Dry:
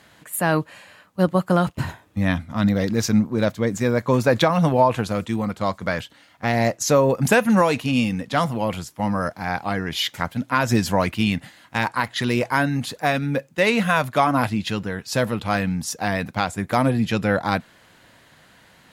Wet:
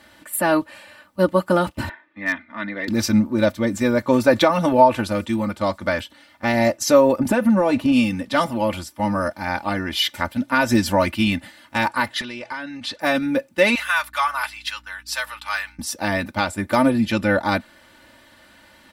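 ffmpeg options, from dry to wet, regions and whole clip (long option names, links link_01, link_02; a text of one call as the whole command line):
ffmpeg -i in.wav -filter_complex "[0:a]asettb=1/sr,asplit=3[link_01][link_02][link_03];[link_01]atrim=end=1.894[link_04];[link_02]atrim=start=1.89:end=2.88,asetpts=PTS-STARTPTS,afade=type=in:duration=0.004:curve=qsin,afade=type=out:start_time=0.986:duration=0.004:curve=qsin,highpass=460,equalizer=frequency=550:width_type=q:width=4:gain=-10,equalizer=frequency=810:width_type=q:width=4:gain=-8,equalizer=frequency=1300:width_type=q:width=4:gain=-4,equalizer=frequency=1900:width_type=q:width=4:gain=7,equalizer=frequency=2900:width_type=q:width=4:gain=-6,lowpass=frequency=3000:width=0.5412,lowpass=frequency=3000:width=1.3066,volume=16dB,asoftclip=hard,volume=-16dB[link_05];[link_03]atrim=start=2.876[link_06];[link_04][link_05]acrossfade=duration=0.004:curve1=hsin:curve2=qsin[link_07];[link_07][link_06]acrossfade=duration=0.004:curve1=qsin:curve2=hsin,asettb=1/sr,asplit=3[link_08][link_09][link_10];[link_08]atrim=end=7.194[link_11];[link_09]atrim=start=7.19:end=7.92,asetpts=PTS-STARTPTS,afade=type=in:duration=0.004:curve=qsin,afade=type=out:start_time=0.726:duration=0.004:curve=qsin,tiltshelf=frequency=1400:gain=6.5,acompressor=threshold=-15dB:ratio=5:attack=3.2:release=140:knee=1:detection=peak[link_12];[link_10]atrim=start=7.916[link_13];[link_11][link_12]acrossfade=duration=0.004:curve1=hsin:curve2=qsin[link_14];[link_14][link_13]acrossfade=duration=0.004:curve1=qsin:curve2=hsin,asettb=1/sr,asplit=3[link_15][link_16][link_17];[link_15]atrim=end=12.214[link_18];[link_16]atrim=start=12.21:end=13,asetpts=PTS-STARTPTS,afade=type=in:duration=0.004:curve=qsin,afade=type=out:start_time=0.786:duration=0.004:curve=qsin,lowpass=4500,acompressor=threshold=-27dB:ratio=8:attack=3.2:release=140:knee=1:detection=peak,tiltshelf=frequency=1300:gain=-5.5[link_19];[link_17]atrim=start=12.996[link_20];[link_18][link_19]acrossfade=duration=0.004:curve1=hsin:curve2=qsin[link_21];[link_21][link_20]acrossfade=duration=0.004:curve1=qsin:curve2=hsin,asettb=1/sr,asplit=3[link_22][link_23][link_24];[link_22]atrim=end=13.754[link_25];[link_23]atrim=start=13.75:end=15.79,asetpts=PTS-STARTPTS,afade=type=in:duration=0.004:curve=qsin,afade=type=out:start_time=2.036:duration=0.004:curve=qsin,highpass=frequency=1000:width=0.5412,highpass=frequency=1000:width=1.3066,agate=range=-33dB:threshold=-41dB:ratio=3:release=100:detection=peak,aeval=exprs='val(0)+0.002*(sin(2*PI*60*n/s)+sin(2*PI*2*60*n/s)/2+sin(2*PI*3*60*n/s)/3+sin(2*PI*4*60*n/s)/4+sin(2*PI*5*60*n/s)/5)':channel_layout=same[link_26];[link_24]atrim=start=15.786[link_27];[link_25][link_26]acrossfade=duration=0.004:curve1=hsin:curve2=qsin[link_28];[link_28][link_27]acrossfade=duration=0.004:curve1=qsin:curve2=hsin,bandreject=frequency=6700:width=9,aecho=1:1:3.4:0.81" out.wav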